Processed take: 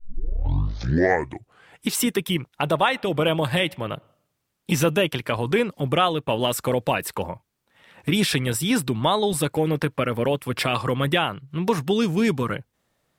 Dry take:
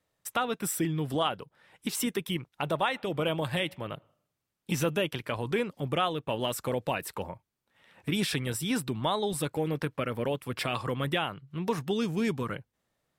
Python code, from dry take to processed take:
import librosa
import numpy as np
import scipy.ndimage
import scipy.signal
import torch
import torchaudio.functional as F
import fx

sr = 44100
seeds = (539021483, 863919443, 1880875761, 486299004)

y = fx.tape_start_head(x, sr, length_s=1.85)
y = F.gain(torch.from_numpy(y), 8.0).numpy()